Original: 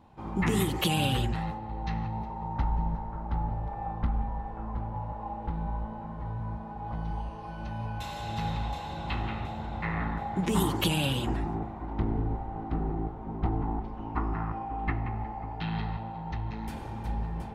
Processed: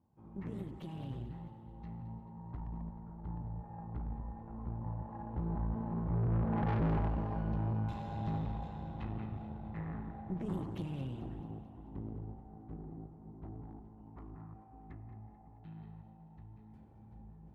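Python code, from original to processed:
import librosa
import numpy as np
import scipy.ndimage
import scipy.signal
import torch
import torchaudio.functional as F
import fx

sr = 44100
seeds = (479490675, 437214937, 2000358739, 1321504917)

y = np.minimum(x, 2.0 * 10.0 ** (-22.5 / 20.0) - x)
y = fx.doppler_pass(y, sr, speed_mps=7, closest_m=1.6, pass_at_s=6.76)
y = scipy.signal.sosfilt(scipy.signal.butter(2, 120.0, 'highpass', fs=sr, output='sos'), y)
y = fx.tilt_eq(y, sr, slope=-4.5)
y = fx.tube_stage(y, sr, drive_db=38.0, bias=0.65)
y = fx.echo_feedback(y, sr, ms=218, feedback_pct=54, wet_db=-13.0)
y = y * 10.0 ** (8.5 / 20.0)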